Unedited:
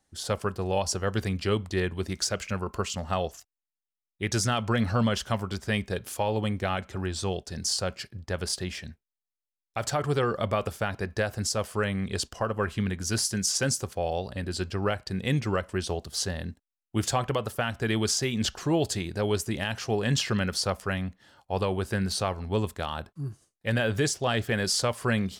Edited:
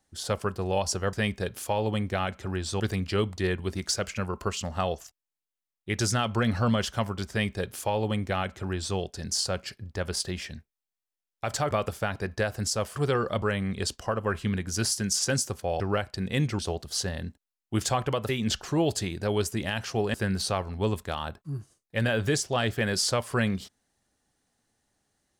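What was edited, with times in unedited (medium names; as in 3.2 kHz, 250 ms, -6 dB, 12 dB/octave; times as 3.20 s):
5.63–7.30 s: copy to 1.13 s
10.04–10.50 s: move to 11.75 s
14.13–14.73 s: delete
15.52–15.81 s: delete
17.51–18.23 s: delete
20.08–21.85 s: delete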